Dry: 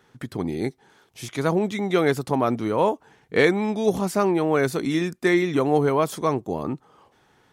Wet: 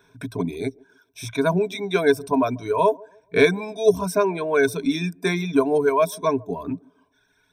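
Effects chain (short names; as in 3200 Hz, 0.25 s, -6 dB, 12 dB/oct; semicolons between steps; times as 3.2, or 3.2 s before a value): reverb removal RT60 1.6 s; ripple EQ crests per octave 1.6, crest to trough 17 dB; on a send: band-limited delay 0.142 s, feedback 31%, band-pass 450 Hz, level -24 dB; on the sum: gain -1.5 dB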